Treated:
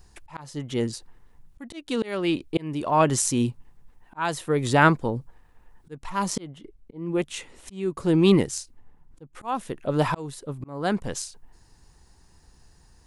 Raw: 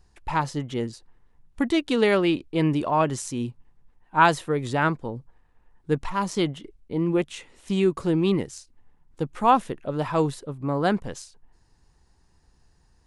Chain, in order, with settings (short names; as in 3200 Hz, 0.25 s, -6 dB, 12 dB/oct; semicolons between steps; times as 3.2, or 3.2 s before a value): high shelf 6700 Hz +8 dB; auto swell 0.631 s; 6.39–9.35 mismatched tape noise reduction decoder only; gain +5.5 dB